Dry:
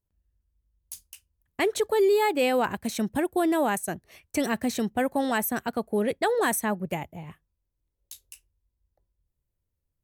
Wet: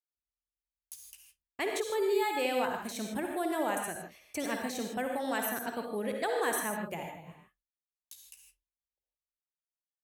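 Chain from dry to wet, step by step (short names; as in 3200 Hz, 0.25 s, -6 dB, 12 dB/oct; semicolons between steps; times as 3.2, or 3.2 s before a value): expander -58 dBFS; low shelf 290 Hz -8.5 dB; on a send: reverb, pre-delay 48 ms, DRR 2 dB; on the sum: gain -7 dB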